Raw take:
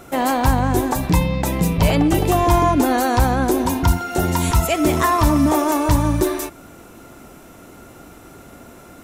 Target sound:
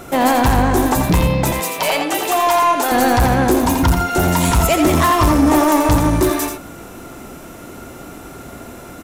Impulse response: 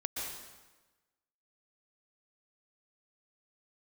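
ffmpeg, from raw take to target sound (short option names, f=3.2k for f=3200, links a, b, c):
-filter_complex "[0:a]asettb=1/sr,asplit=3[a][b][c];[a]atrim=end=1.514[d];[b]atrim=start=1.51:end=2.92,asetpts=PTS-STARTPTS,afade=t=in:d=0.004:c=qsin,afade=t=out:st=1.406:d=0.004:c=qsin,highpass=680[e];[c]atrim=start=2.916[f];[d][e]acrossfade=d=0.004:c1=hsin:c2=qsin[g];[g][f]acrossfade=d=0.004:c1=qsin:c2=hsin,asoftclip=type=tanh:threshold=-16dB,aecho=1:1:85:0.473,volume=6.5dB"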